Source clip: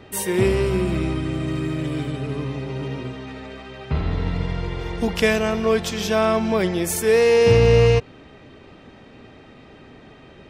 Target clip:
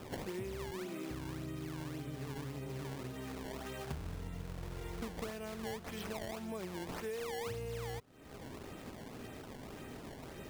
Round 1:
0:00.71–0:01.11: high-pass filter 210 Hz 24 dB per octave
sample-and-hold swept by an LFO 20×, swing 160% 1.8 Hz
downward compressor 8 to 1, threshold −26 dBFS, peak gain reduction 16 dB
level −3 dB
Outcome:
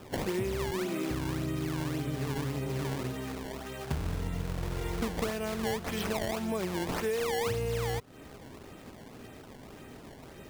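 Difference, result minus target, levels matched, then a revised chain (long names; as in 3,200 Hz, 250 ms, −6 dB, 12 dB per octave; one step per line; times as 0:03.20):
downward compressor: peak gain reduction −9.5 dB
0:00.71–0:01.11: high-pass filter 210 Hz 24 dB per octave
sample-and-hold swept by an LFO 20×, swing 160% 1.8 Hz
downward compressor 8 to 1, threshold −37 dBFS, peak gain reduction 25.5 dB
level −3 dB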